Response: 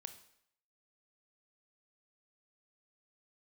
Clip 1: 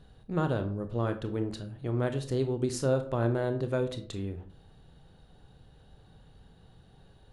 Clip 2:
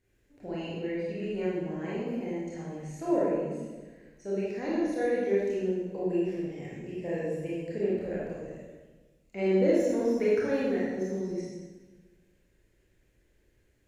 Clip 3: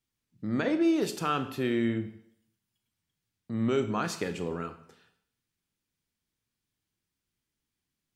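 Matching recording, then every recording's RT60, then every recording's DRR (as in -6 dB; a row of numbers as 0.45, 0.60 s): 3; 0.50, 1.3, 0.70 s; 8.0, -8.0, 9.0 dB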